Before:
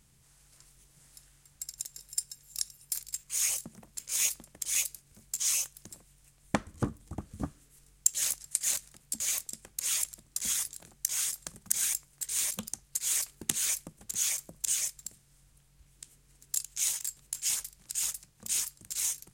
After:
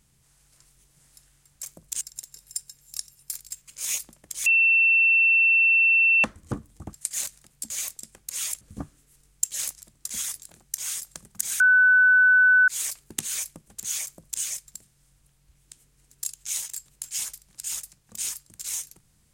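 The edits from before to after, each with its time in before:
0:03.32–0:04.01: remove
0:04.77–0:06.55: beep over 2,690 Hz −15.5 dBFS
0:07.24–0:08.43: move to 0:10.11
0:11.91–0:12.99: beep over 1,500 Hz −13.5 dBFS
0:14.35–0:14.73: duplicate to 0:01.63

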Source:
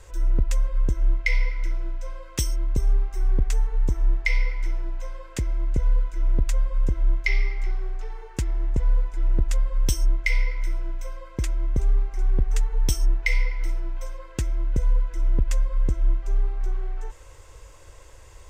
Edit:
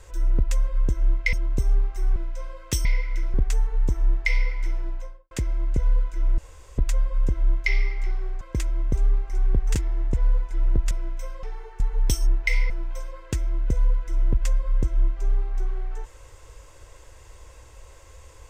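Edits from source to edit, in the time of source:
0:01.33–0:01.82: swap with 0:02.51–0:03.34
0:04.89–0:05.31: fade out and dull
0:06.38: splice in room tone 0.40 s
0:08.01–0:08.38: swap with 0:11.25–0:12.59
0:09.54–0:10.73: remove
0:13.49–0:13.76: remove

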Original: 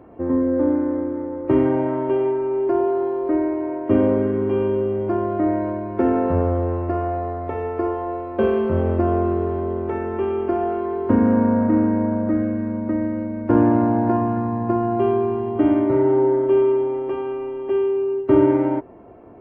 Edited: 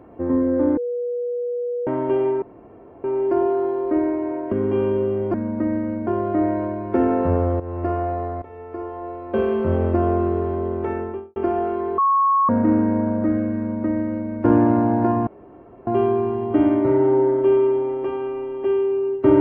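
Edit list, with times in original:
0:00.77–0:01.87: beep over 485 Hz −22 dBFS
0:02.42: splice in room tone 0.62 s
0:03.90–0:04.30: remove
0:06.65–0:06.92: fade in, from −13 dB
0:07.47–0:08.78: fade in, from −16.5 dB
0:09.98–0:10.41: fade out and dull
0:11.03–0:11.54: beep over 1,100 Hz −14 dBFS
0:12.63–0:13.36: duplicate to 0:05.12
0:14.32–0:14.92: fill with room tone

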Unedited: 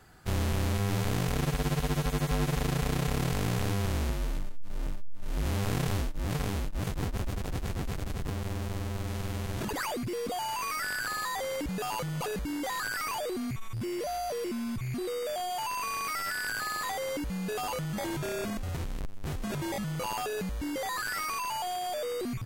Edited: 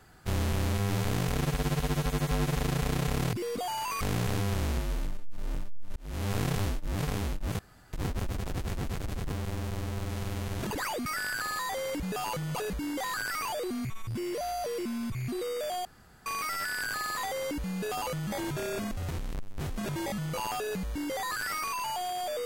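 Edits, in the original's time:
0:05.28–0:05.63: fade in linear
0:06.91: splice in room tone 0.34 s
0:10.04–0:10.72: move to 0:03.33
0:15.51–0:15.92: fill with room tone

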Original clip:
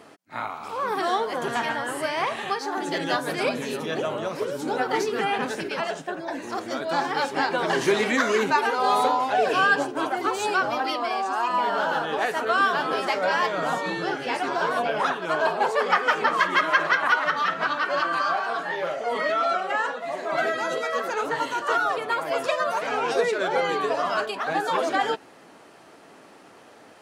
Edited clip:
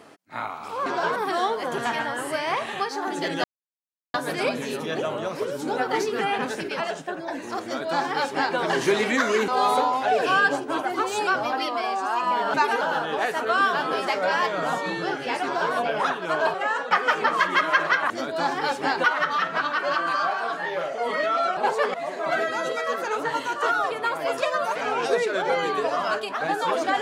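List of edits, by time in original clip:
0:03.14: splice in silence 0.70 s
0:06.63–0:07.57: duplicate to 0:17.10
0:08.48–0:08.75: move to 0:11.81
0:14.44–0:14.74: duplicate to 0:00.86
0:15.54–0:15.91: swap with 0:19.63–0:20.00

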